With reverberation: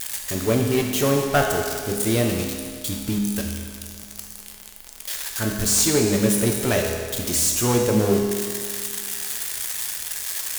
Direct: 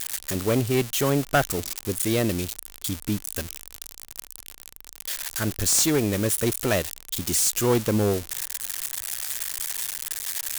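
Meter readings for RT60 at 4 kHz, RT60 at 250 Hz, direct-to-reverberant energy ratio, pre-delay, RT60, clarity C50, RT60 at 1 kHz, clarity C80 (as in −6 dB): 1.8 s, 2.1 s, 0.5 dB, 5 ms, 2.0 s, 3.0 dB, 2.0 s, 4.5 dB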